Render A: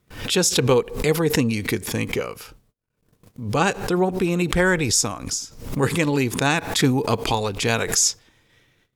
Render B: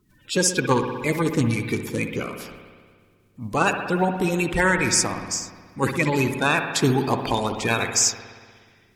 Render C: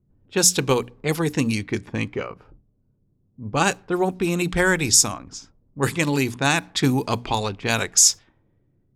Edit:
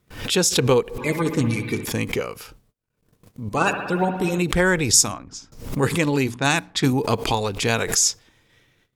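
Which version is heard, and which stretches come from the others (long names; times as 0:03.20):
A
0:00.98–0:01.85: punch in from B
0:03.49–0:04.38: punch in from B
0:04.93–0:05.52: punch in from C
0:06.27–0:06.93: punch in from C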